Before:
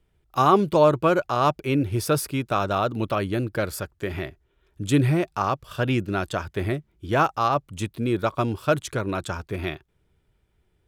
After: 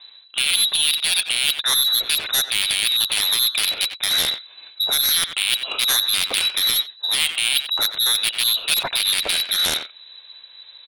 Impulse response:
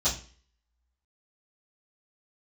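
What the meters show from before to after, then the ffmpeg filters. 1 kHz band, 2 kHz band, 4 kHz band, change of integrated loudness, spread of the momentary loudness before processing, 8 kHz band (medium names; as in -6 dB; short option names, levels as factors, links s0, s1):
-10.5 dB, +7.5 dB, +22.5 dB, +6.5 dB, 12 LU, +18.5 dB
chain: -filter_complex "[0:a]areverse,acompressor=threshold=0.0224:ratio=5,areverse,lowpass=f=3400:t=q:w=0.5098,lowpass=f=3400:t=q:w=0.6013,lowpass=f=3400:t=q:w=0.9,lowpass=f=3400:t=q:w=2.563,afreqshift=-4000,aeval=exprs='0.112*(cos(1*acos(clip(val(0)/0.112,-1,1)))-cos(1*PI/2))+0.000794*(cos(6*acos(clip(val(0)/0.112,-1,1)))-cos(6*PI/2))+0.0398*(cos(7*acos(clip(val(0)/0.112,-1,1)))-cos(7*PI/2))':c=same,asplit=2[s0][s1];[s1]adelay=90,highpass=300,lowpass=3400,asoftclip=type=hard:threshold=0.0282,volume=0.251[s2];[s0][s2]amix=inputs=2:normalize=0,alimiter=level_in=16.8:limit=0.891:release=50:level=0:latency=1,volume=0.562"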